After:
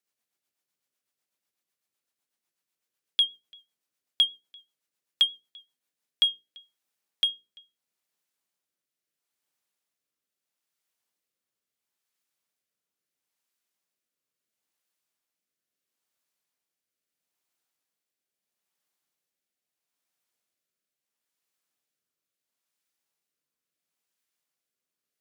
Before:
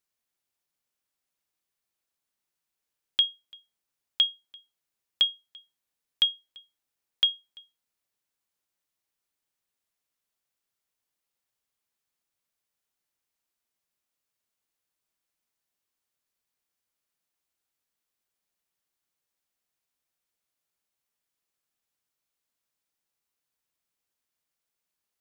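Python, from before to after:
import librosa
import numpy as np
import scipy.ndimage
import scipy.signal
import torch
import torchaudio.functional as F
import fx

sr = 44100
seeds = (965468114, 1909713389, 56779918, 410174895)

p1 = scipy.signal.sosfilt(scipy.signal.butter(2, 140.0, 'highpass', fs=sr, output='sos'), x)
p2 = fx.hum_notches(p1, sr, base_hz=60, count=8)
p3 = 10.0 ** (-26.0 / 20.0) * np.tanh(p2 / 10.0 ** (-26.0 / 20.0))
p4 = p2 + (p3 * 10.0 ** (-8.0 / 20.0))
y = fx.rotary_switch(p4, sr, hz=8.0, then_hz=0.75, switch_at_s=5.65)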